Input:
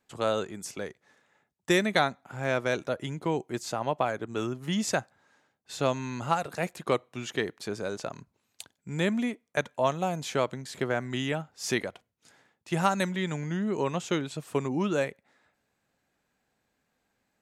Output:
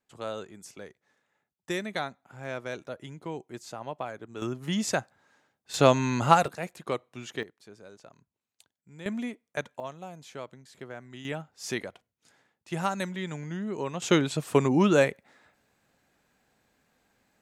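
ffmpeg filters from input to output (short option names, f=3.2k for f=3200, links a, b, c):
-af "asetnsamples=n=441:p=0,asendcmd='4.42 volume volume 0dB;5.74 volume volume 7.5dB;6.48 volume volume -4.5dB;7.43 volume volume -16dB;9.06 volume volume -4.5dB;9.8 volume volume -13dB;11.25 volume volume -4dB;14.02 volume volume 6.5dB',volume=-8dB"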